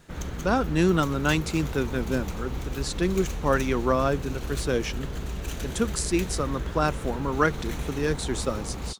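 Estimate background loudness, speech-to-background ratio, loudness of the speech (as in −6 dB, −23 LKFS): −34.5 LKFS, 7.0 dB, −27.5 LKFS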